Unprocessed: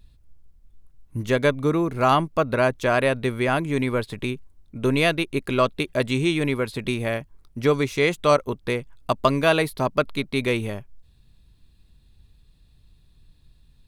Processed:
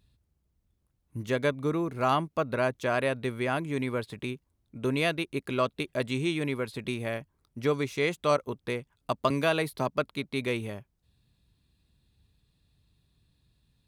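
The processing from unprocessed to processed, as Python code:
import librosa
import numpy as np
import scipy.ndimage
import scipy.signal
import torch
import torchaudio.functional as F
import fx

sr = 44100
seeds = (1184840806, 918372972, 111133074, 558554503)

y = scipy.signal.sosfilt(scipy.signal.butter(2, 73.0, 'highpass', fs=sr, output='sos'), x)
y = fx.band_squash(y, sr, depth_pct=40, at=(9.3, 9.89))
y = y * 10.0 ** (-7.0 / 20.0)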